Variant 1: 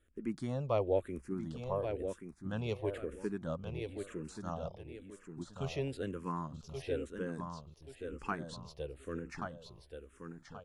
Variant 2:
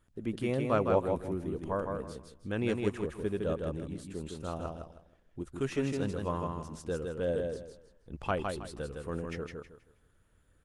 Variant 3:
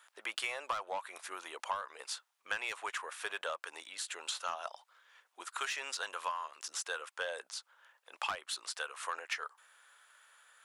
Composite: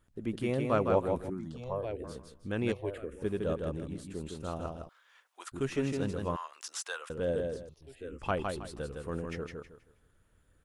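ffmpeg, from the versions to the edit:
-filter_complex "[0:a]asplit=3[a][b][c];[2:a]asplit=2[d][e];[1:a]asplit=6[f][g][h][i][j][k];[f]atrim=end=1.302[l];[a]atrim=start=1.298:end=2.042[m];[g]atrim=start=2.038:end=2.722[n];[b]atrim=start=2.718:end=3.222[o];[h]atrim=start=3.218:end=4.892[p];[d]atrim=start=4.888:end=5.522[q];[i]atrim=start=5.518:end=6.362[r];[e]atrim=start=6.358:end=7.102[s];[j]atrim=start=7.098:end=7.692[t];[c]atrim=start=7.688:end=8.222[u];[k]atrim=start=8.218[v];[l][m]acrossfade=d=0.004:c1=hsin:c2=hsin[w];[w][n]acrossfade=d=0.004:c1=hsin:c2=hsin[x];[x][o]acrossfade=d=0.004:c1=hsin:c2=hsin[y];[y][p]acrossfade=d=0.004:c1=hsin:c2=hsin[z];[z][q]acrossfade=d=0.004:c1=hsin:c2=hsin[aa];[aa][r]acrossfade=d=0.004:c1=hsin:c2=hsin[ab];[ab][s]acrossfade=d=0.004:c1=hsin:c2=hsin[ac];[ac][t]acrossfade=d=0.004:c1=hsin:c2=hsin[ad];[ad][u]acrossfade=d=0.004:c1=hsin:c2=hsin[ae];[ae][v]acrossfade=d=0.004:c1=hsin:c2=hsin"

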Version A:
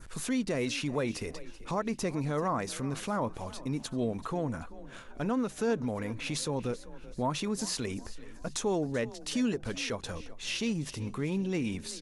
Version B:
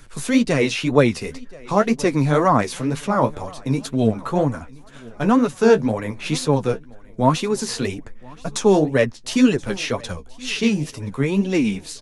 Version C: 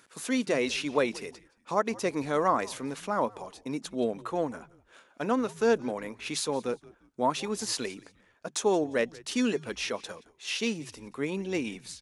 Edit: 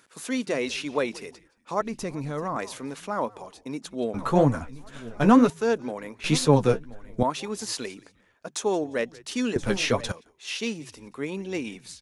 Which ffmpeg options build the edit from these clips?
-filter_complex "[1:a]asplit=3[a][b][c];[2:a]asplit=5[d][e][f][g][h];[d]atrim=end=1.812[i];[0:a]atrim=start=1.808:end=2.562[j];[e]atrim=start=2.558:end=4.142[k];[a]atrim=start=4.138:end=5.502[l];[f]atrim=start=5.498:end=6.242[m];[b]atrim=start=6.238:end=7.232[n];[g]atrim=start=7.228:end=9.562[o];[c]atrim=start=9.558:end=10.122[p];[h]atrim=start=10.118[q];[i][j]acrossfade=d=0.004:c1=hsin:c2=hsin[r];[r][k]acrossfade=d=0.004:c1=hsin:c2=hsin[s];[s][l]acrossfade=d=0.004:c1=hsin:c2=hsin[t];[t][m]acrossfade=d=0.004:c1=hsin:c2=hsin[u];[u][n]acrossfade=d=0.004:c1=hsin:c2=hsin[v];[v][o]acrossfade=d=0.004:c1=hsin:c2=hsin[w];[w][p]acrossfade=d=0.004:c1=hsin:c2=hsin[x];[x][q]acrossfade=d=0.004:c1=hsin:c2=hsin"

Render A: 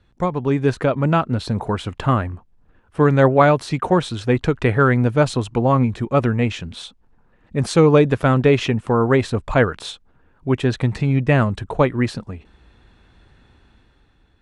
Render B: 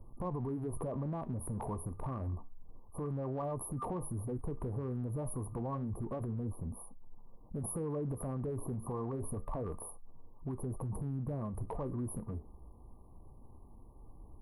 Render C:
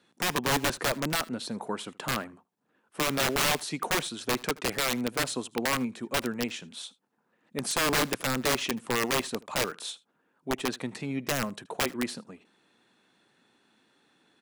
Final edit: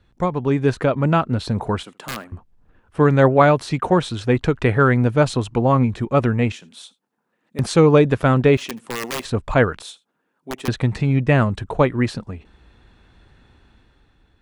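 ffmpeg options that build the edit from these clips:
-filter_complex "[2:a]asplit=4[a][b][c][d];[0:a]asplit=5[e][f][g][h][i];[e]atrim=end=1.832[j];[a]atrim=start=1.828:end=2.322[k];[f]atrim=start=2.318:end=6.522[l];[b]atrim=start=6.518:end=7.592[m];[g]atrim=start=7.588:end=8.572[n];[c]atrim=start=8.568:end=9.252[o];[h]atrim=start=9.248:end=9.822[p];[d]atrim=start=9.818:end=10.682[q];[i]atrim=start=10.678[r];[j][k]acrossfade=d=0.004:c1=hsin:c2=hsin[s];[s][l]acrossfade=d=0.004:c1=hsin:c2=hsin[t];[t][m]acrossfade=d=0.004:c1=hsin:c2=hsin[u];[u][n]acrossfade=d=0.004:c1=hsin:c2=hsin[v];[v][o]acrossfade=d=0.004:c1=hsin:c2=hsin[w];[w][p]acrossfade=d=0.004:c1=hsin:c2=hsin[x];[x][q]acrossfade=d=0.004:c1=hsin:c2=hsin[y];[y][r]acrossfade=d=0.004:c1=hsin:c2=hsin"

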